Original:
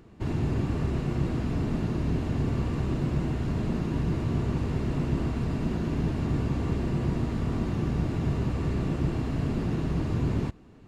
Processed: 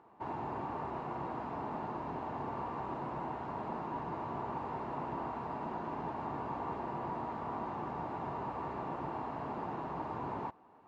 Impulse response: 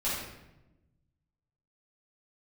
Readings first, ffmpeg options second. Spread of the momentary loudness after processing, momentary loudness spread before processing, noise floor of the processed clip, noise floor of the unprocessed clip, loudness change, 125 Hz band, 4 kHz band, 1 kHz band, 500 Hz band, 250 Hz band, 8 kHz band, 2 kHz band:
1 LU, 1 LU, −59 dBFS, −49 dBFS, −11.0 dB, −20.5 dB, −15.0 dB, +5.0 dB, −6.5 dB, −14.5 dB, can't be measured, −7.0 dB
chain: -af "bandpass=frequency=900:width_type=q:width=4.1:csg=0,volume=8.5dB"

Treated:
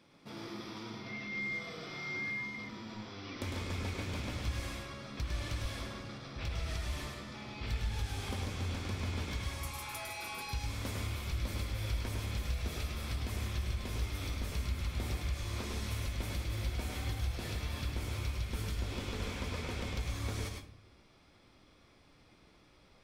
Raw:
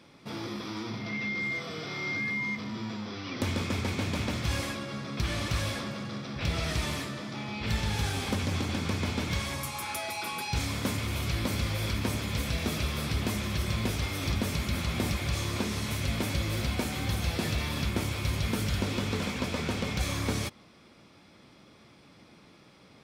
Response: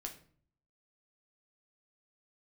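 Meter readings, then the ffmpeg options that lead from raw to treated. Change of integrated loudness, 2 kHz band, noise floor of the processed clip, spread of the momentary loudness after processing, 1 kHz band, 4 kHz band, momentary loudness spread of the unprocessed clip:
−7.0 dB, −7.5 dB, −63 dBFS, 6 LU, −8.5 dB, −8.5 dB, 6 LU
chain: -filter_complex "[0:a]asubboost=boost=7.5:cutoff=55,acompressor=threshold=-25dB:ratio=6,asplit=2[link_01][link_02];[1:a]atrim=start_sample=2205,adelay=104[link_03];[link_02][link_03]afir=irnorm=-1:irlink=0,volume=0dB[link_04];[link_01][link_04]amix=inputs=2:normalize=0,volume=-8.5dB"

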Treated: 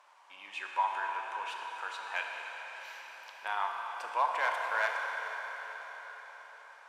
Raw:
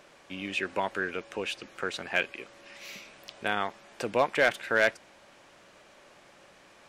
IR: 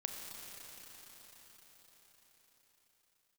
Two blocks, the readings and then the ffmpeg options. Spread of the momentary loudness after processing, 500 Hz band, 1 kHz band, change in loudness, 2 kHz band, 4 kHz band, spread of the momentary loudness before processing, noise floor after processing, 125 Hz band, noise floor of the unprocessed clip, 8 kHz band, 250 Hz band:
16 LU, −12.5 dB, +2.0 dB, −5.5 dB, −4.5 dB, −7.5 dB, 18 LU, −55 dBFS, below −35 dB, −57 dBFS, −8.0 dB, below −25 dB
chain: -filter_complex "[0:a]highpass=frequency=940:width_type=q:width=5.8[link_01];[1:a]atrim=start_sample=2205,asetrate=48510,aresample=44100[link_02];[link_01][link_02]afir=irnorm=-1:irlink=0,volume=-7.5dB" -ar 32000 -c:a aac -b:a 96k

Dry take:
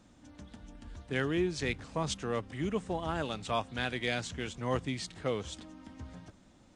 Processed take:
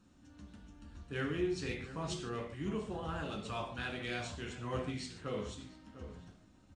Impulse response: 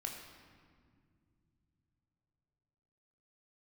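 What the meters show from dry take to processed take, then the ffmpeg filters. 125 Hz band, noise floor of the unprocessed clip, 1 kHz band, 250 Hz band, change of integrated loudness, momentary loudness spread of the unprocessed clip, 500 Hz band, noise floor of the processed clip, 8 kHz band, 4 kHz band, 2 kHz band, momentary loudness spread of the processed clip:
−4.0 dB, −60 dBFS, −6.0 dB, −4.0 dB, −5.5 dB, 18 LU, −5.5 dB, −63 dBFS, −6.5 dB, −6.0 dB, −5.5 dB, 19 LU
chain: -filter_complex "[0:a]asplit=2[link_01][link_02];[link_02]adelay=699.7,volume=-13dB,highshelf=frequency=4000:gain=-15.7[link_03];[link_01][link_03]amix=inputs=2:normalize=0[link_04];[1:a]atrim=start_sample=2205,afade=type=out:start_time=0.35:duration=0.01,atrim=end_sample=15876,asetrate=83790,aresample=44100[link_05];[link_04][link_05]afir=irnorm=-1:irlink=0,volume=1dB"

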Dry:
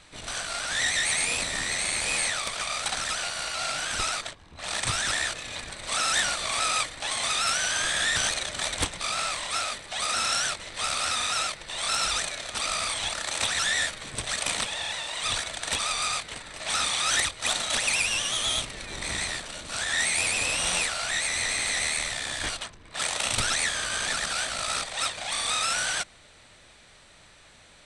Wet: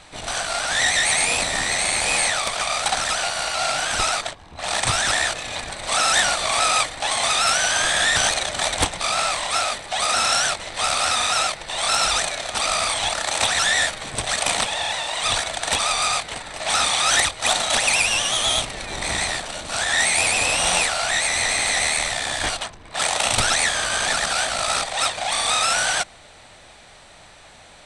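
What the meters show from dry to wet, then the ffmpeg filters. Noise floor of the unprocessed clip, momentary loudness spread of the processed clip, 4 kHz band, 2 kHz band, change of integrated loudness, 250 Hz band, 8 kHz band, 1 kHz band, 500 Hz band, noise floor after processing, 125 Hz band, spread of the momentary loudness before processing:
−54 dBFS, 7 LU, +6.0 dB, +6.5 dB, +6.5 dB, +6.5 dB, +6.0 dB, +9.0 dB, +10.5 dB, −47 dBFS, +6.0 dB, 7 LU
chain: -af "equalizer=frequency=760:width_type=o:width=0.7:gain=7.5,volume=6dB"

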